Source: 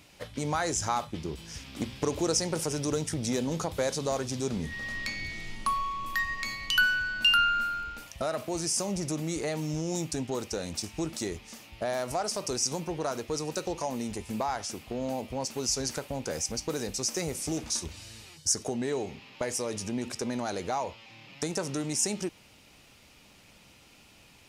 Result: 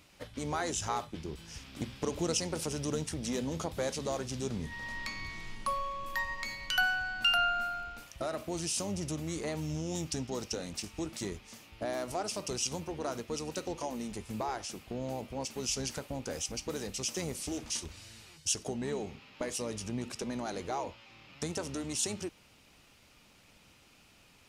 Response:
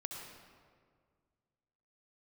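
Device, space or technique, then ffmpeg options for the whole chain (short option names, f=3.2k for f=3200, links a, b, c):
octave pedal: -filter_complex "[0:a]asplit=2[a][b];[b]asetrate=22050,aresample=44100,atempo=2,volume=-9dB[c];[a][c]amix=inputs=2:normalize=0,asettb=1/sr,asplit=3[d][e][f];[d]atrim=end=10.064[g];[e]atrim=start=10.06:end=10.55,asetpts=PTS-STARTPTS,afade=t=in:d=0.004:c=qsin,afade=t=out:st=0.486:d=0.004:c=qsin,equalizer=f=5.4k:t=o:w=0.45:g=7.5[h];[f]atrim=start=10.546[i];[g][h]acrossfade=d=0.004:c1=hsin:c2=qsin[j];[j][i]acrossfade=d=0.004:c1=qsin:c2=hsin,volume=-5dB"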